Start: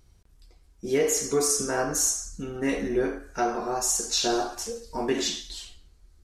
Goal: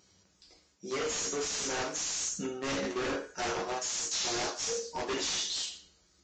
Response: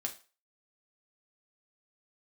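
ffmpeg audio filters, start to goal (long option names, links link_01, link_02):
-filter_complex "[0:a]highshelf=frequency=5600:gain=11.5,bandreject=frequency=60:width_type=h:width=6,bandreject=frequency=120:width_type=h:width=6,bandreject=frequency=180:width_type=h:width=6,bandreject=frequency=240:width_type=h:width=6,bandreject=frequency=300:width_type=h:width=6,bandreject=frequency=360:width_type=h:width=6,bandreject=frequency=420:width_type=h:width=6,bandreject=frequency=480:width_type=h:width=6,asplit=2[link_01][link_02];[link_02]acrusher=bits=3:mix=0:aa=0.000001,volume=-4dB[link_03];[link_01][link_03]amix=inputs=2:normalize=0[link_04];[1:a]atrim=start_sample=2205,asetrate=35721,aresample=44100[link_05];[link_04][link_05]afir=irnorm=-1:irlink=0,areverse,acompressor=threshold=-27dB:ratio=5,areverse,highpass=170,aeval=exprs='0.0422*(abs(mod(val(0)/0.0422+3,4)-2)-1)':channel_layout=same" -ar 16000 -c:a libvorbis -b:a 32k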